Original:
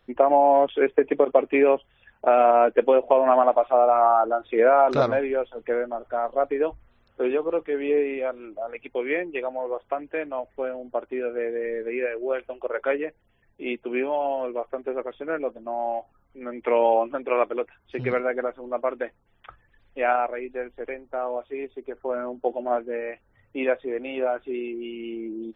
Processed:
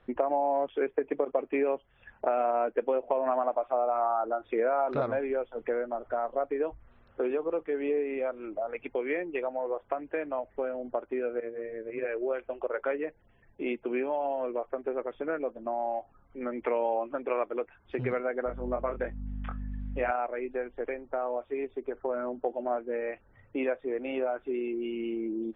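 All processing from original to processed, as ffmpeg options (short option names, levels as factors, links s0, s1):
-filter_complex "[0:a]asettb=1/sr,asplit=3[s0][s1][s2];[s0]atrim=end=11.404[s3];[s1]atrim=start=11.4:end=12.09,asetpts=PTS-STARTPTS,afade=t=in:d=0.004:c=qsin,afade=t=out:st=0.686:d=0.004:c=qsin,agate=range=0.355:threshold=0.0447:ratio=16:release=100:detection=peak,bandreject=f=810:w=17,tremolo=f=110:d=0.667[s4];[s2]atrim=start=12.086[s5];[s3][s4]acrossfade=d=0.004:c1=hsin:c2=qsin[s6];[s6][s5]acrossfade=d=0.004:c1=qsin:c2=hsin,asettb=1/sr,asplit=3[s7][s8][s9];[s7]atrim=end=18.464[s10];[s8]atrim=start=18.46:end=20.11,asetpts=PTS-STARTPTS,afade=t=in:d=0.004:c=qsin,afade=t=out:st=1.646:d=0.004:c=qsin,aeval=exprs='val(0)+0.0126*(sin(2*PI*50*n/s)+sin(2*PI*2*50*n/s)/2+sin(2*PI*3*50*n/s)/3+sin(2*PI*4*50*n/s)/4+sin(2*PI*5*50*n/s)/5)':c=same,asplit=2[s11][s12];[s12]adelay=24,volume=0.562[s13];[s11][s13]amix=inputs=2:normalize=0,atrim=end_sample=72765[s14];[s9]atrim=start=20.106[s15];[s10][s14]acrossfade=d=0.004:c1=hsin:c2=qsin[s16];[s16][s15]acrossfade=d=0.004:c1=qsin:c2=hsin,lowpass=2300,acompressor=threshold=0.02:ratio=2.5,volume=1.41"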